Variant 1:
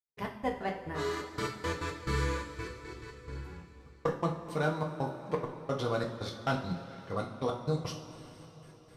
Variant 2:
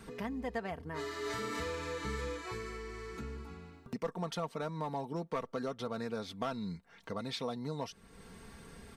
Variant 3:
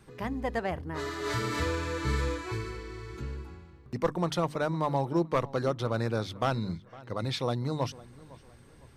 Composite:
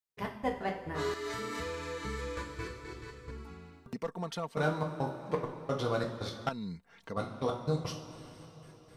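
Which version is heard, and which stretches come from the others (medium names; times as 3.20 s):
1
1.14–2.37 s: from 2
3.31–4.57 s: from 2
6.49–7.17 s: from 2
not used: 3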